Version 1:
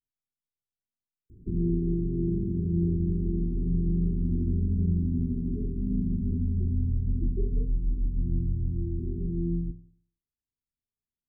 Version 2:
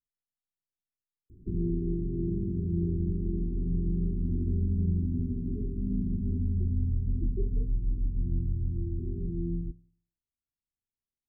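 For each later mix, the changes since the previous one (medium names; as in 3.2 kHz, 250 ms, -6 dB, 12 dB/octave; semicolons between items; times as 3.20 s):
speech: send -8.5 dB; background: send -9.5 dB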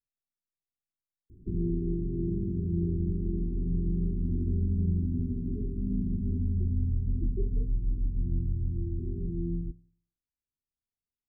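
no change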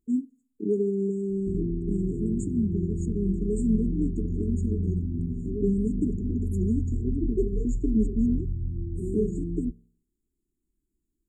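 first voice: unmuted; second voice: remove four-pole ladder low-pass 2 kHz, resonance 85%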